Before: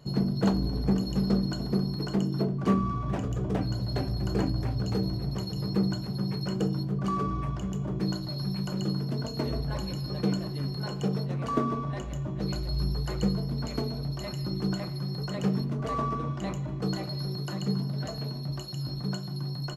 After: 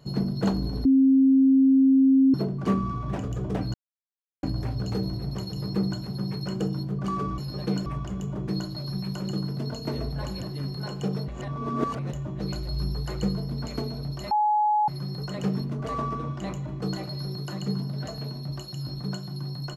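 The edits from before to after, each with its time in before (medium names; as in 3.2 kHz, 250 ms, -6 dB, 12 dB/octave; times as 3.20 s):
0.85–2.34 s: bleep 267 Hz -14.5 dBFS
3.74–4.43 s: mute
9.94–10.42 s: move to 7.38 s
11.28–12.13 s: reverse
14.31–14.88 s: bleep 844 Hz -19 dBFS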